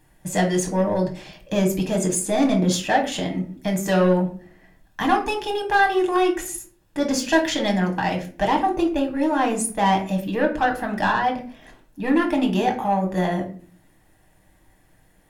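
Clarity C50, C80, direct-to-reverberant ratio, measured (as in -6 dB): 10.5 dB, 15.0 dB, 2.0 dB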